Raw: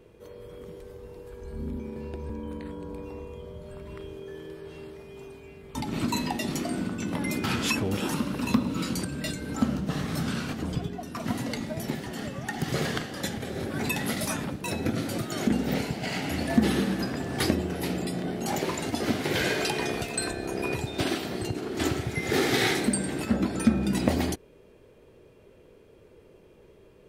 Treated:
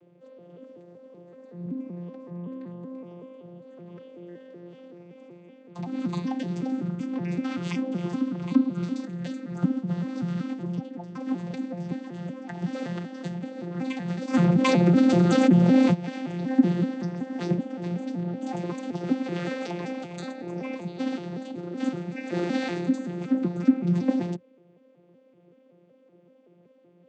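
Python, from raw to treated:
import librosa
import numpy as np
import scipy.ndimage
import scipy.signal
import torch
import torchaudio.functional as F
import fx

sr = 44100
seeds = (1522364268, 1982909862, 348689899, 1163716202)

y = fx.vocoder_arp(x, sr, chord='bare fifth', root=53, every_ms=189)
y = fx.env_flatten(y, sr, amount_pct=70, at=(14.33, 15.93), fade=0.02)
y = F.gain(torch.from_numpy(y), 1.0).numpy()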